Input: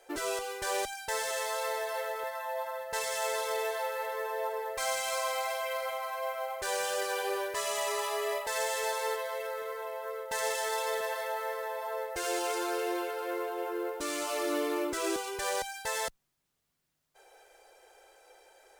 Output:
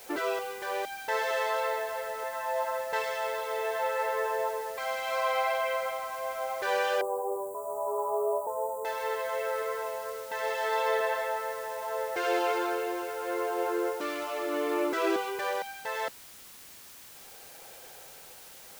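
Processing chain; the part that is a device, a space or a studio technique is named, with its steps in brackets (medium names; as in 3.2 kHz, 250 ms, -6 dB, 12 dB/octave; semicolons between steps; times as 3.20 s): shortwave radio (band-pass 270–2800 Hz; tremolo 0.73 Hz, depth 50%; white noise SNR 18 dB); 7.01–8.85 s: Chebyshev band-stop 1–7.7 kHz, order 4; trim +6 dB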